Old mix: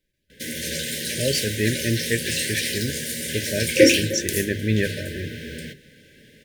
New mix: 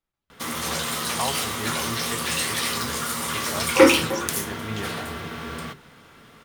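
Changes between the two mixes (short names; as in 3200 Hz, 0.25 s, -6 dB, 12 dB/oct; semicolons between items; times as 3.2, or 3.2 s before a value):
speech -11.5 dB; master: remove brick-wall FIR band-stop 620–1500 Hz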